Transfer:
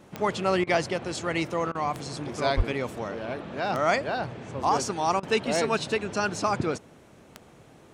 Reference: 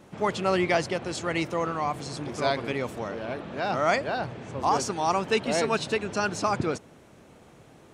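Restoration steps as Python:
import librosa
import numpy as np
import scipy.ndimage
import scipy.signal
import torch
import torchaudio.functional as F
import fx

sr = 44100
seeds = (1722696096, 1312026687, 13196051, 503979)

y = fx.fix_declick_ar(x, sr, threshold=10.0)
y = fx.highpass(y, sr, hz=140.0, slope=24, at=(2.56, 2.68), fade=0.02)
y = fx.fix_interpolate(y, sr, at_s=(0.64, 1.72, 5.2), length_ms=29.0)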